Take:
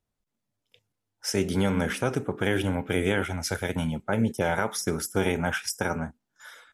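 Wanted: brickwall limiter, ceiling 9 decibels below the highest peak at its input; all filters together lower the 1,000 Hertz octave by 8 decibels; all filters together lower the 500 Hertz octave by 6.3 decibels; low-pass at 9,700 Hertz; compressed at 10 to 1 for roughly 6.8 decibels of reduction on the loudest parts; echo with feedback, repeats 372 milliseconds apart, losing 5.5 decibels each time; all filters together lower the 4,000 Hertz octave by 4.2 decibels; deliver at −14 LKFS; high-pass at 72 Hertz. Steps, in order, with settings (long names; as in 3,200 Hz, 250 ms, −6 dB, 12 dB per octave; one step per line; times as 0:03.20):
high-pass filter 72 Hz
low-pass filter 9,700 Hz
parametric band 500 Hz −6 dB
parametric band 1,000 Hz −9 dB
parametric band 4,000 Hz −5.5 dB
downward compressor 10 to 1, threshold −28 dBFS
brickwall limiter −27.5 dBFS
repeating echo 372 ms, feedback 53%, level −5.5 dB
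level +22.5 dB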